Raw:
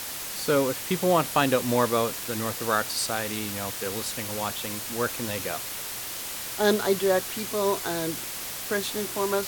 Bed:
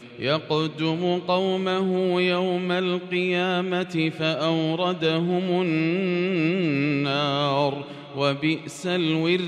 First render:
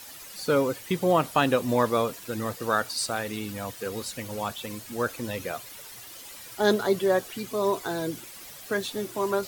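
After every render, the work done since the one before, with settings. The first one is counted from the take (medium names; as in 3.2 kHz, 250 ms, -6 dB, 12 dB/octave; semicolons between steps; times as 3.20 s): noise reduction 12 dB, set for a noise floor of -35 dBFS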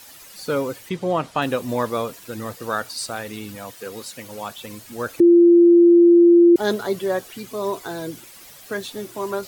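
0.89–1.42 s: distance through air 58 m; 3.55–4.55 s: high-pass 180 Hz 6 dB/octave; 5.20–6.56 s: bleep 344 Hz -8 dBFS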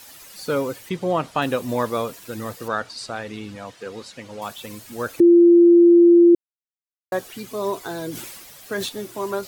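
2.68–4.42 s: distance through air 88 m; 6.35–7.12 s: mute; 8.10–8.89 s: decay stretcher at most 36 dB/s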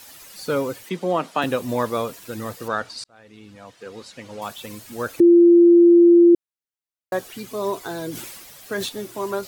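0.84–1.44 s: steep high-pass 170 Hz; 3.04–4.32 s: fade in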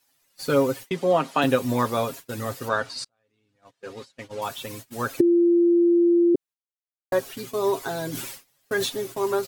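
gate -38 dBFS, range -25 dB; comb 7.4 ms, depth 58%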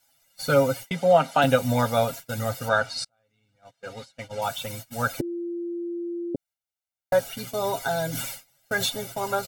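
comb 1.4 ms, depth 84%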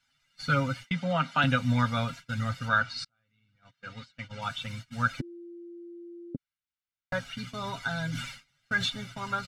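low-pass 3.8 kHz 12 dB/octave; high-order bell 520 Hz -14.5 dB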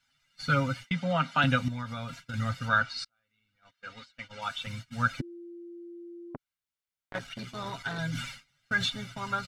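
1.68–2.34 s: compression 4:1, threshold -34 dBFS; 2.85–4.67 s: peaking EQ 130 Hz -12.5 dB 1.5 oct; 6.30–7.99 s: transformer saturation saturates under 960 Hz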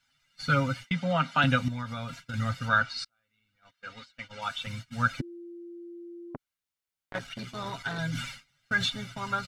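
trim +1 dB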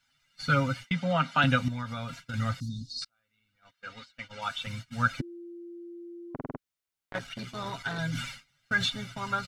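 2.60–3.02 s: Chebyshev band-stop 350–4000 Hz, order 5; 6.34 s: stutter in place 0.05 s, 5 plays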